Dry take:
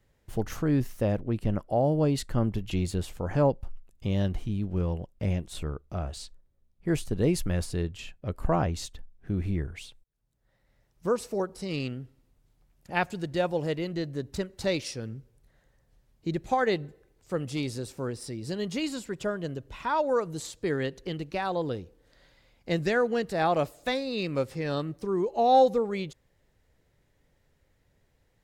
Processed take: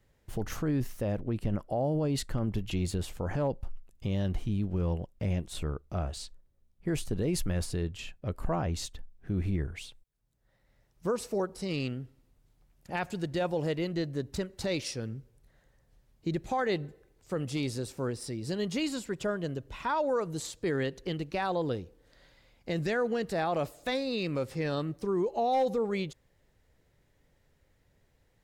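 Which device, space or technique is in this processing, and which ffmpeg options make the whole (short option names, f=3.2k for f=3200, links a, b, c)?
clipper into limiter: -af "asoftclip=type=hard:threshold=-14dB,alimiter=limit=-21.5dB:level=0:latency=1:release=29"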